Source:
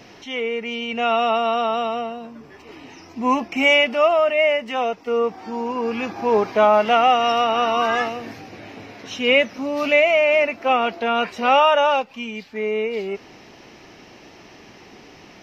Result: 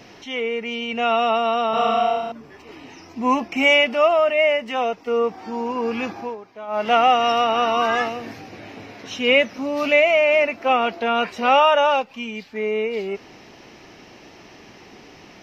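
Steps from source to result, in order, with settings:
0:01.70–0:02.32: flutter between parallel walls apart 5.5 metres, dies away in 1.2 s
0:06.09–0:06.94: duck −20 dB, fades 0.27 s

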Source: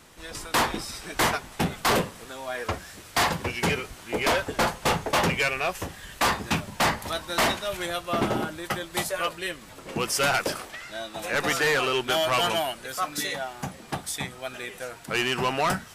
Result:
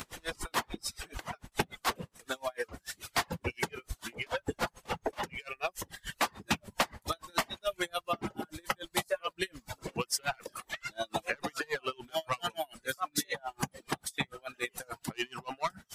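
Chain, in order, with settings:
downward compressor 16 to 1, threshold −33 dBFS, peak gain reduction 13.5 dB
reverb reduction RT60 1.4 s
noise gate with hold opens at −44 dBFS
upward compression, threshold −40 dBFS
tremolo with a sine in dB 6.9 Hz, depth 34 dB
level +8.5 dB

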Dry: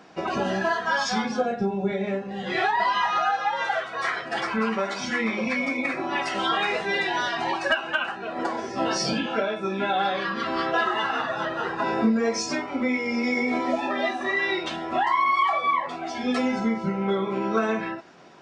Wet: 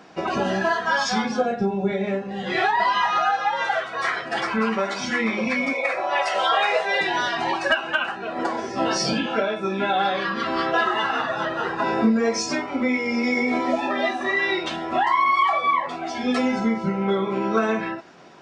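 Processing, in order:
0:05.73–0:07.01: low shelf with overshoot 390 Hz −12 dB, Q 3
level +2.5 dB

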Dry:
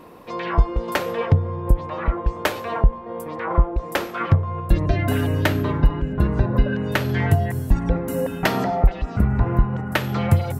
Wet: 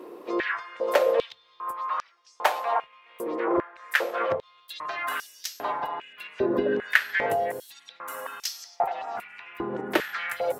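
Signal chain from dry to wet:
pitch-shifted copies added +3 semitones −12 dB
high-pass on a step sequencer 2.5 Hz 360–5,500 Hz
level −4.5 dB

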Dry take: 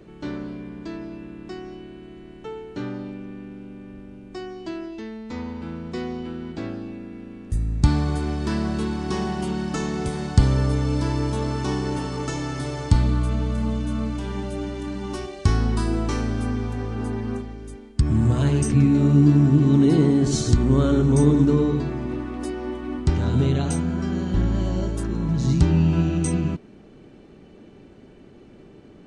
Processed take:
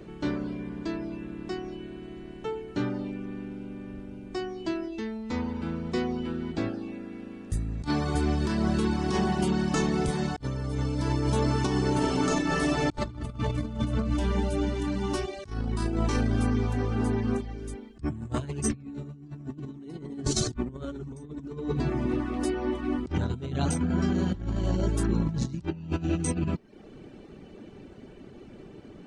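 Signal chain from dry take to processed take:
0:11.90–0:13.79: thrown reverb, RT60 2.7 s, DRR −1.5 dB
reverb reduction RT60 0.55 s
0:06.69–0:08.15: low-shelf EQ 160 Hz −9 dB
compressor whose output falls as the input rises −26 dBFS, ratio −0.5
level −1.5 dB

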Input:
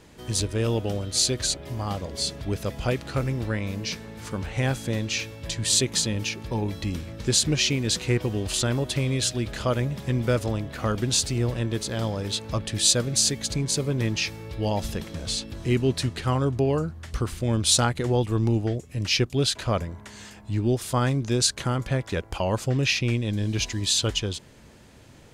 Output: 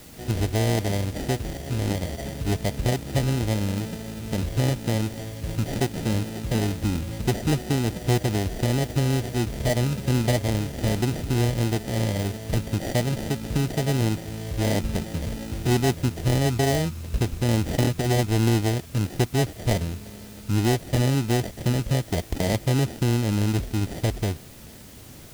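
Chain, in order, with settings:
drawn EQ curve 970 Hz 0 dB, 4,800 Hz −28 dB, 9,100 Hz −6 dB
in parallel at +1 dB: downward compressor, threshold −28 dBFS, peak gain reduction 10.5 dB
on the sum: sample-rate reduction 1,100 Hz, jitter 0%
formants moved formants +3 semitones
parametric band 1,100 Hz −10 dB 1.4 octaves
bit-depth reduction 8 bits, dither triangular
highs frequency-modulated by the lows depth 0.18 ms

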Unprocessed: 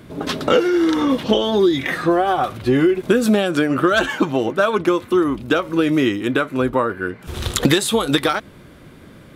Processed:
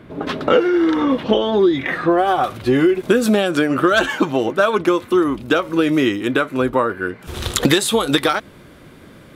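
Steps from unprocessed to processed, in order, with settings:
bass and treble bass −3 dB, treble −14 dB, from 0:02.17 treble 0 dB
level +1.5 dB

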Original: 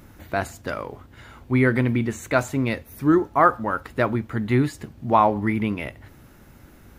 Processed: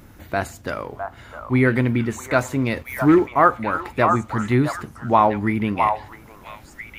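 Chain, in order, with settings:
0:02.76–0:03.33: leveller curve on the samples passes 1
echo through a band-pass that steps 658 ms, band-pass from 950 Hz, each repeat 1.4 octaves, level −3 dB
level +1.5 dB

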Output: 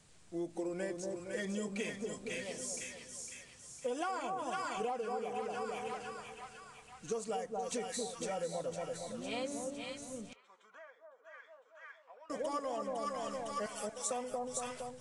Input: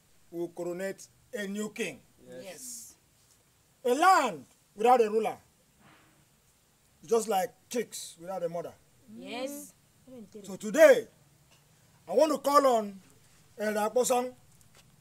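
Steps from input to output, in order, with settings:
in parallel at −6 dB: soft clipping −26 dBFS, distortion −6 dB
0:13.66–0:14.11: on the sum: first difference
on a send: echo with a time of its own for lows and highs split 1,100 Hz, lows 231 ms, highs 506 ms, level −5 dB
on the sum: downward compressor 20 to 1, threshold −31 dBFS, peak gain reduction 19.5 dB
0:10.33–0:12.30: four-pole ladder band-pass 1,300 Hz, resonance 50%
level −3 dB
Ogg Vorbis 48 kbit/s 22,050 Hz

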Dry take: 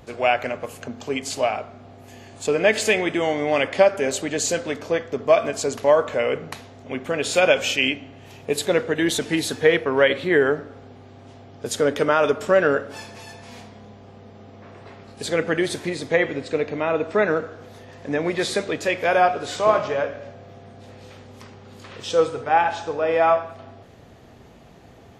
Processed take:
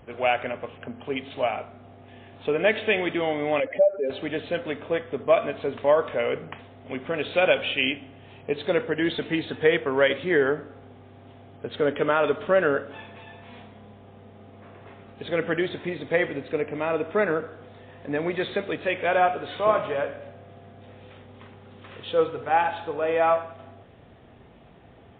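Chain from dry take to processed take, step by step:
0:03.60–0:04.10: expanding power law on the bin magnitudes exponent 2.3
level −3 dB
MP3 24 kbit/s 8,000 Hz

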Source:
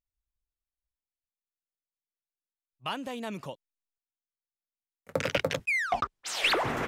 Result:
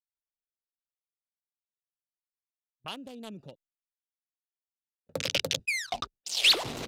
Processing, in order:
adaptive Wiener filter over 41 samples
noise gate with hold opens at −46 dBFS
high shelf with overshoot 2,600 Hz −7.5 dB, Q 1.5, from 0:02.88 +8 dB, from 0:05.22 +13.5 dB
level −4.5 dB

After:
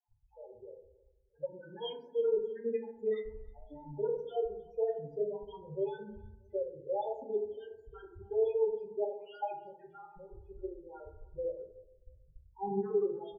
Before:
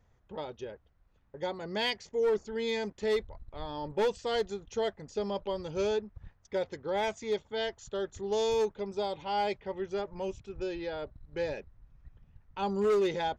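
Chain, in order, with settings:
time-frequency cells dropped at random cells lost 34%
low-shelf EQ 150 Hz +3 dB
mains-hum notches 60/120/180/240/300/360 Hz
output level in coarse steps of 16 dB
spectral peaks only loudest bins 4
high-frequency loss of the air 170 metres
repeating echo 315 ms, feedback 26%, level −22 dB
convolution reverb RT60 0.75 s, pre-delay 4 ms, DRR 0.5 dB
one half of a high-frequency compander decoder only

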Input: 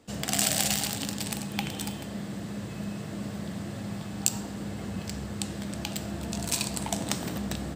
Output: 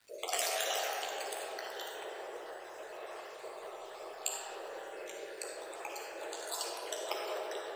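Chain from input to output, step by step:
time-frequency cells dropped at random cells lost 59%
Chebyshev high-pass filter 380 Hz, order 6
high-shelf EQ 2,100 Hz −7.5 dB
surface crackle 330 per second −52 dBFS
flanger 0.29 Hz, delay 9.8 ms, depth 7.2 ms, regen −40%
convolution reverb RT60 4.1 s, pre-delay 15 ms, DRR −2 dB
level +4.5 dB

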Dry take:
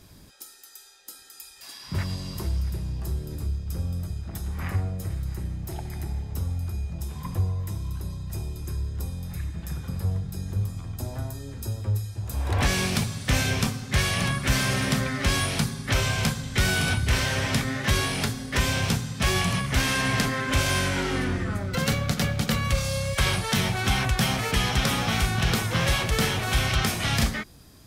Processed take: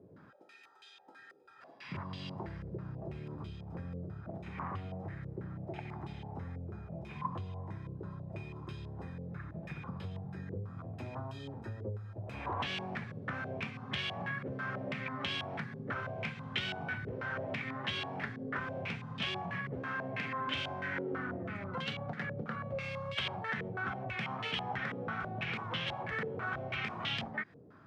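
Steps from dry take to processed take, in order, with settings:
high-pass filter 110 Hz 24 dB per octave
downward compressor, threshold −33 dBFS, peak gain reduction 13 dB
low-pass on a step sequencer 6.1 Hz 480–3,100 Hz
level −5 dB

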